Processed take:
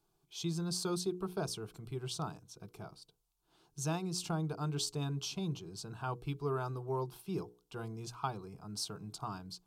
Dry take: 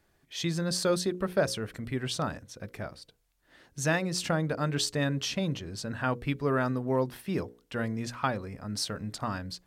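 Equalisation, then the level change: static phaser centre 370 Hz, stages 8; -5.0 dB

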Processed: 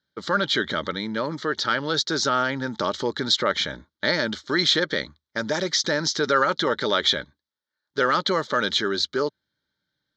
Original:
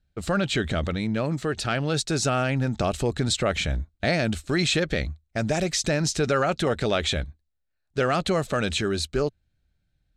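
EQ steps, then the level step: cabinet simulation 330–7000 Hz, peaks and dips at 620 Hz +9 dB, 890 Hz +9 dB, 3.3 kHz +5 dB; static phaser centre 2.6 kHz, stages 6; +5.5 dB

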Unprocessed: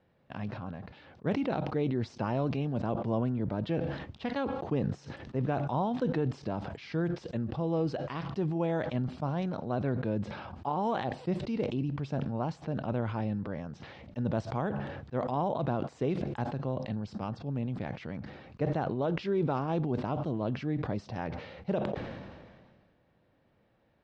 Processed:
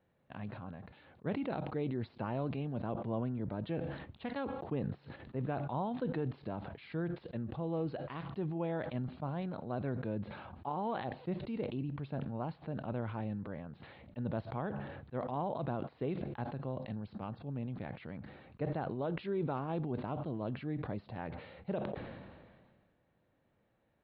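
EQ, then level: elliptic low-pass 4.2 kHz, stop band 40 dB; distance through air 60 m; -5.0 dB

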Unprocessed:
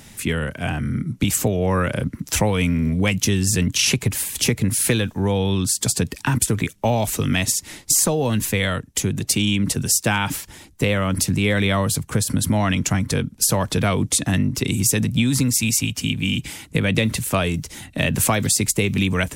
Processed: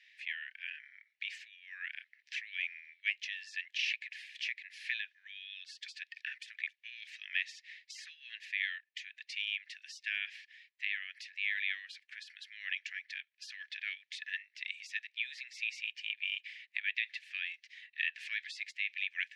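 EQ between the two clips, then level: rippled Chebyshev high-pass 1.7 kHz, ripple 3 dB; low-pass 5 kHz 12 dB/octave; distance through air 360 m; -3.0 dB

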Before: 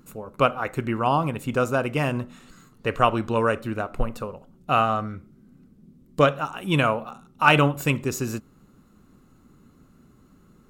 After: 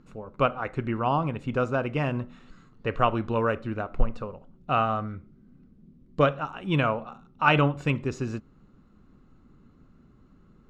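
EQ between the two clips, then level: low-pass 11 kHz; distance through air 150 m; bass shelf 61 Hz +8 dB; -3.0 dB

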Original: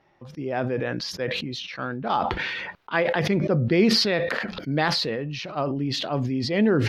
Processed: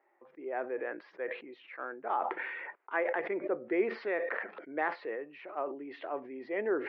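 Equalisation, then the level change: Chebyshev band-pass 350–2100 Hz, order 3; -7.5 dB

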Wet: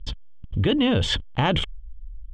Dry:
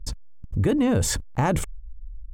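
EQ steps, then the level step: resonant low-pass 3.2 kHz, resonance Q 13; 0.0 dB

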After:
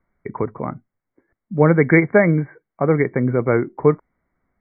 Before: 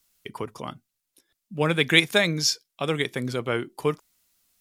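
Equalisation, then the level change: brick-wall FIR low-pass 2.3 kHz; tilt shelf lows +6 dB, about 1.4 kHz; +5.0 dB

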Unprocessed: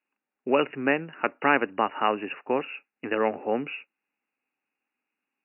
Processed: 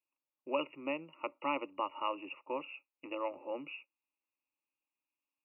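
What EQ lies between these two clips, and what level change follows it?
static phaser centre 430 Hz, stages 6; static phaser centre 1.1 kHz, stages 8; -4.5 dB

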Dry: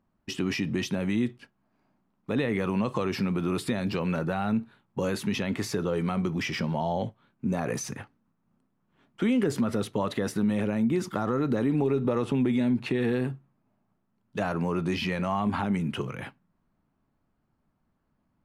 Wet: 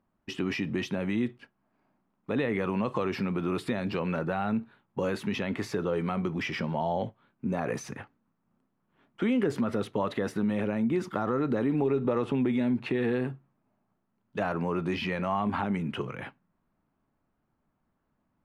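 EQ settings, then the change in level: tone controls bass -4 dB, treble -10 dB; 0.0 dB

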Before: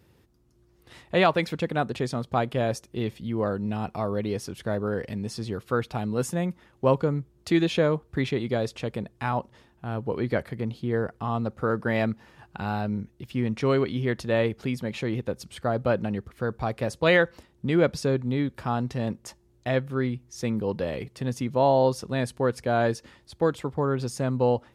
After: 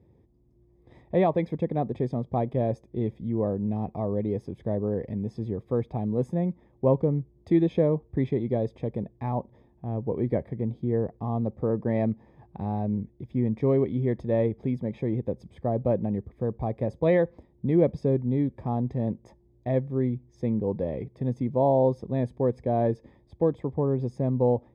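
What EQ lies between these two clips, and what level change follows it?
boxcar filter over 31 samples; +1.5 dB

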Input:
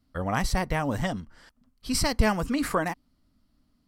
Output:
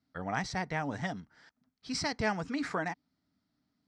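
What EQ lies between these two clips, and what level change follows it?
cabinet simulation 170–5900 Hz, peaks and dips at 230 Hz -7 dB, 350 Hz -5 dB, 540 Hz -9 dB, 1.1 kHz -8 dB, 2.9 kHz -8 dB, 4.5 kHz -4 dB; -2.5 dB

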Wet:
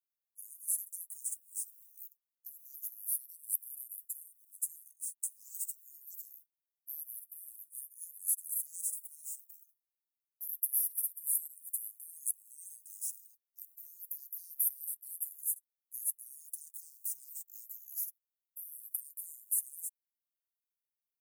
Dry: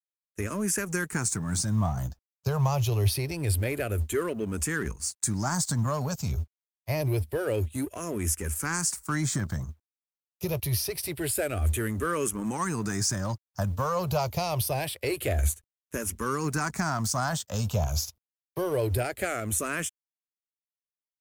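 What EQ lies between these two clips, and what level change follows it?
inverse Chebyshev high-pass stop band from 2.3 kHz, stop band 80 dB; +5.0 dB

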